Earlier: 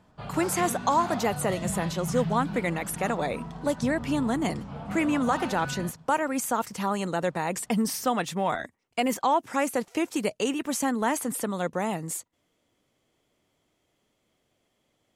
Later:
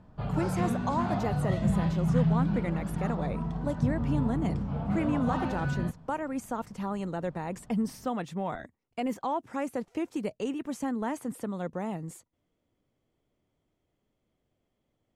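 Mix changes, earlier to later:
speech -8.5 dB; master: add tilt -2.5 dB/oct

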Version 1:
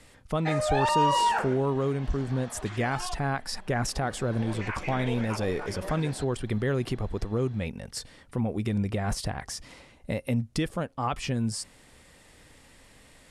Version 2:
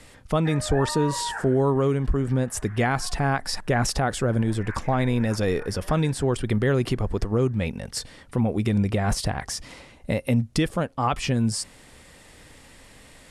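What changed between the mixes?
speech +5.5 dB; background: add ladder low-pass 1900 Hz, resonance 65%

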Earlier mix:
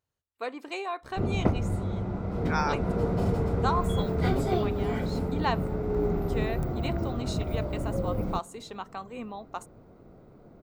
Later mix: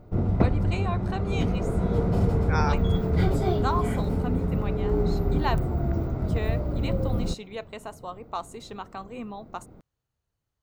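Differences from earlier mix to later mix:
background: entry -1.05 s; master: add low shelf 160 Hz +7 dB

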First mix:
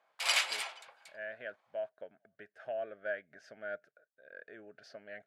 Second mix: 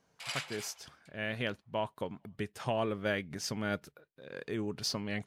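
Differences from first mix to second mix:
speech: remove double band-pass 1000 Hz, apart 1.3 oct; background -9.5 dB

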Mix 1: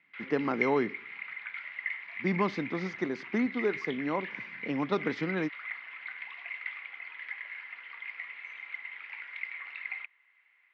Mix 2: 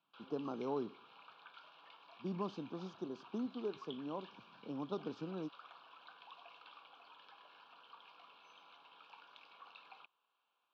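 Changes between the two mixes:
speech -11.0 dB; master: add Butterworth band-stop 2000 Hz, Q 0.87

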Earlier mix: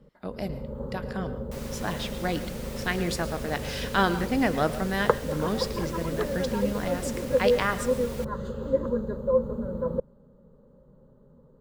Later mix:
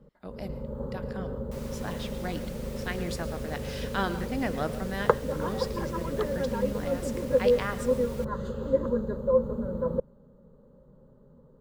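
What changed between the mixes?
speech -6.5 dB; second sound -5.0 dB

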